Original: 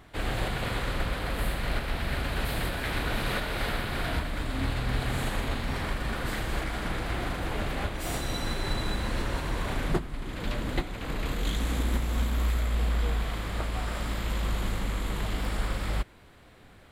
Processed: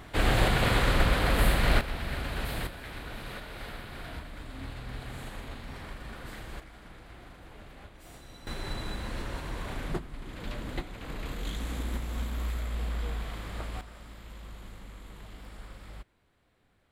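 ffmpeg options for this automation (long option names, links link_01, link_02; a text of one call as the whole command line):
ffmpeg -i in.wav -af "asetnsamples=nb_out_samples=441:pad=0,asendcmd='1.81 volume volume -3.5dB;2.67 volume volume -11dB;6.6 volume volume -18dB;8.47 volume volume -6dB;13.81 volume volume -16dB',volume=6dB" out.wav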